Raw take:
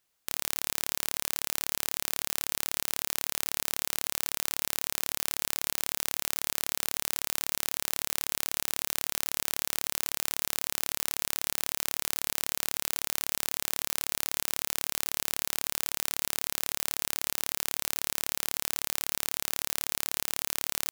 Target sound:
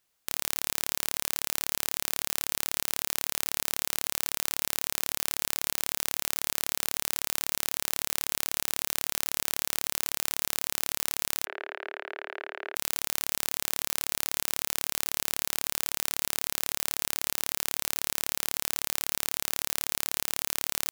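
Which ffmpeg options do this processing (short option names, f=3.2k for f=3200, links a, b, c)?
-filter_complex "[0:a]asettb=1/sr,asplit=3[a][b][c];[a]atrim=end=11.454[d];[b]atrim=start=11.45:end=12.75,asetpts=PTS-STARTPTS,afade=t=in:d=0.004:c=qsin,afade=t=out:st=1.296:d=0.004:c=qsin,highpass=f=380:w=0.5412,highpass=f=380:w=1.3066,equalizer=f=400:t=q:w=4:g=9,equalizer=f=620:t=q:w=4:g=4,equalizer=f=1.1k:t=q:w=4:g=-4,equalizer=f=1.6k:t=q:w=4:g=6,lowpass=f=2.4k:w=0.5412,lowpass=f=2.4k:w=1.3066[e];[c]atrim=start=12.746[f];[d][e]acrossfade=d=0.004:c1=hsin:c2=qsin[g];[g][f]acrossfade=d=0.004:c1=qsin:c2=hsin,volume=1dB"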